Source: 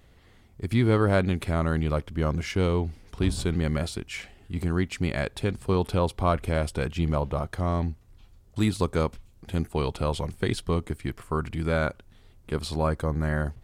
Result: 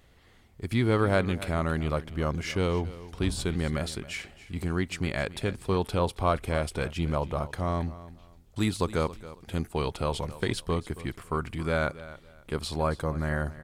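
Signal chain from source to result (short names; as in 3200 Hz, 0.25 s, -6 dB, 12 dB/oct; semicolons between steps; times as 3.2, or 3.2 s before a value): low shelf 440 Hz -4 dB; feedback echo 0.274 s, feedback 25%, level -16.5 dB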